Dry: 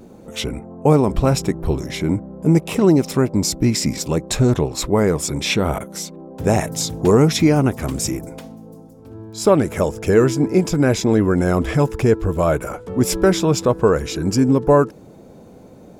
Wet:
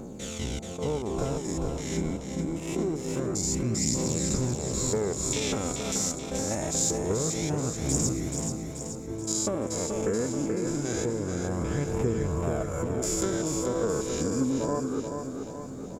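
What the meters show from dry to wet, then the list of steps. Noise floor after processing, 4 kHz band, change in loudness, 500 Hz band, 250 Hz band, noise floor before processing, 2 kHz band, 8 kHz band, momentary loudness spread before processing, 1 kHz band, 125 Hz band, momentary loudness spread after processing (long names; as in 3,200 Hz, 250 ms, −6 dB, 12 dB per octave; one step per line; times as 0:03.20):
−38 dBFS, −9.5 dB, −11.0 dB, −12.0 dB, −11.5 dB, −43 dBFS, −12.5 dB, −1.5 dB, 9 LU, −13.0 dB, −11.5 dB, 7 LU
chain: spectrum averaged block by block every 200 ms
high-shelf EQ 5,000 Hz −4.5 dB
notch filter 2,500 Hz, Q 23
downward compressor 4 to 1, threshold −30 dBFS, peak gain reduction 16 dB
parametric band 7,000 Hz +14.5 dB 0.41 octaves
transient designer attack +4 dB, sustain −3 dB
phase shifter 0.25 Hz, delay 4.7 ms, feedback 40%
tape wow and flutter 18 cents
repeating echo 431 ms, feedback 54%, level −6 dB
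level that may rise only so fast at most 140 dB per second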